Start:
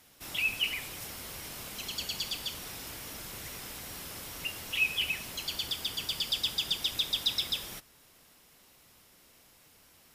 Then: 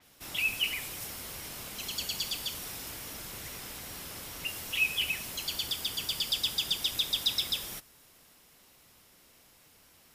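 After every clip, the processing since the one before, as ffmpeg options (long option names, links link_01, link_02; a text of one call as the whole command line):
ffmpeg -i in.wav -af "adynamicequalizer=threshold=0.00708:dfrequency=5800:dqfactor=0.7:tfrequency=5800:tqfactor=0.7:attack=5:release=100:ratio=0.375:range=2:mode=boostabove:tftype=highshelf" out.wav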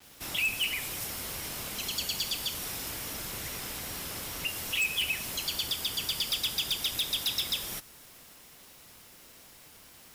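ffmpeg -i in.wav -filter_complex "[0:a]asplit=2[link_01][link_02];[link_02]acompressor=threshold=-41dB:ratio=6,volume=-1dB[link_03];[link_01][link_03]amix=inputs=2:normalize=0,aeval=exprs='0.0794*(abs(mod(val(0)/0.0794+3,4)-2)-1)':channel_layout=same,acrusher=bits=8:mix=0:aa=0.000001" out.wav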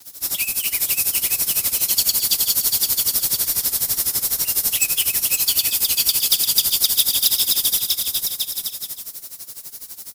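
ffmpeg -i in.wav -filter_complex "[0:a]aexciter=amount=5.5:drive=2.3:freq=4000,asplit=2[link_01][link_02];[link_02]aecho=0:1:520|884|1139|1317|1442:0.631|0.398|0.251|0.158|0.1[link_03];[link_01][link_03]amix=inputs=2:normalize=0,tremolo=f=12:d=0.84,volume=5dB" out.wav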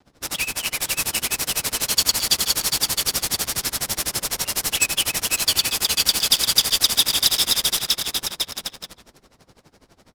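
ffmpeg -i in.wav -af "adynamicsmooth=sensitivity=5.5:basefreq=1000,volume=3dB" out.wav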